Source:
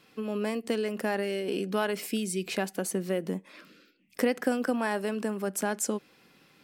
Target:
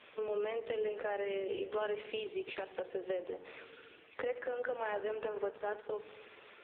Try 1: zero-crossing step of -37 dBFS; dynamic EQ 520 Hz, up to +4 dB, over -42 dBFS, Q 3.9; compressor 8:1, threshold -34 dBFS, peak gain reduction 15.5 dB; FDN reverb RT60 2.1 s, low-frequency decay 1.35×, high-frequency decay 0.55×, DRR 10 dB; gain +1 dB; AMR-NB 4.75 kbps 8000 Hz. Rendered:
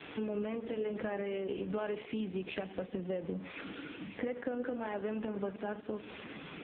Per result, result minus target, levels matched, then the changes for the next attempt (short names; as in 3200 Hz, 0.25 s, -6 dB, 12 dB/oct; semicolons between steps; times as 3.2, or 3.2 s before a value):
250 Hz band +11.5 dB; zero-crossing step: distortion +10 dB
add after dynamic EQ: steep high-pass 350 Hz 48 dB/oct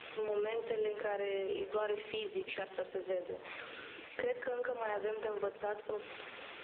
zero-crossing step: distortion +10 dB
change: zero-crossing step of -48 dBFS